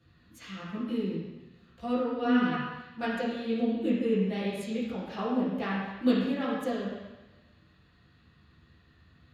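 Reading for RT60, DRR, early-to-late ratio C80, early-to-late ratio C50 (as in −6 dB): 1.1 s, −9.0 dB, 2.0 dB, −0.5 dB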